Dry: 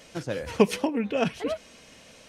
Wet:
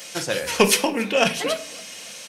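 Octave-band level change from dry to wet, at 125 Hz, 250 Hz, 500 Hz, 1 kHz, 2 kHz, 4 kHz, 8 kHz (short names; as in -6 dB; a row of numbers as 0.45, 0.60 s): +1.0, +1.0, +4.0, +7.5, +11.5, +14.0, +18.0 dB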